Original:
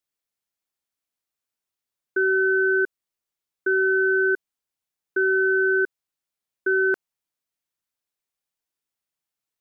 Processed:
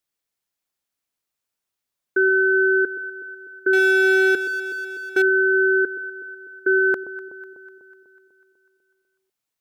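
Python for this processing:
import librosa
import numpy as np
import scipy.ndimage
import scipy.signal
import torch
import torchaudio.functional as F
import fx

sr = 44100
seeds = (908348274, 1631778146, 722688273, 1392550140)

y = fx.echo_alternate(x, sr, ms=124, hz=870.0, feedback_pct=75, wet_db=-13)
y = fx.power_curve(y, sr, exponent=0.7, at=(3.73, 5.22))
y = y * librosa.db_to_amplitude(3.5)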